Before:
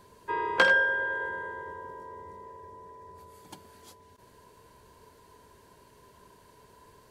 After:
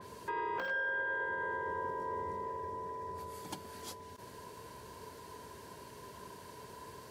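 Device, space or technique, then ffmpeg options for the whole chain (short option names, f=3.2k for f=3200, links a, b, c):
broadcast voice chain: -af "highpass=74,deesser=0.95,acompressor=threshold=-35dB:ratio=4,equalizer=f=5.3k:t=o:w=0.31:g=2.5,alimiter=level_in=10.5dB:limit=-24dB:level=0:latency=1:release=270,volume=-10.5dB,adynamicequalizer=threshold=0.00126:dfrequency=3600:dqfactor=0.7:tfrequency=3600:tqfactor=0.7:attack=5:release=100:ratio=0.375:range=2:mode=cutabove:tftype=highshelf,volume=6.5dB"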